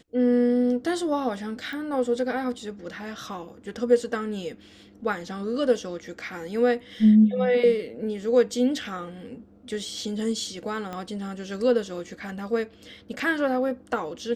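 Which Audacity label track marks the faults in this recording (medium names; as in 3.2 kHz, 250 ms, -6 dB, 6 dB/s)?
1.730000	1.730000	pop
10.930000	10.930000	pop -21 dBFS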